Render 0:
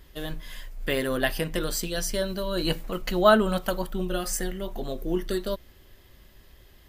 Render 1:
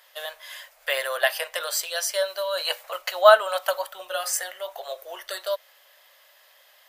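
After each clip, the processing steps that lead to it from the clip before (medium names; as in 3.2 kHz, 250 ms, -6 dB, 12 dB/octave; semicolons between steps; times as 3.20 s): elliptic high-pass 570 Hz, stop band 50 dB; trim +5 dB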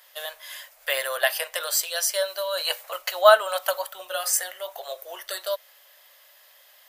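treble shelf 6.2 kHz +7 dB; trim -1 dB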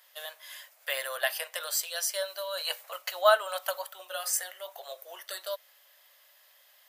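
high-pass 410 Hz 6 dB/octave; trim -6 dB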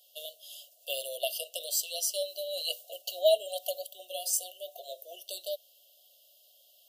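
FFT band-reject 750–2700 Hz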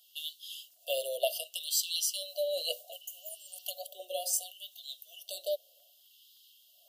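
LFO high-pass sine 0.67 Hz 400–3600 Hz; crackle 11 per s -58 dBFS; spectral replace 3.04–3.59 s, 2.4–6 kHz both; trim -1.5 dB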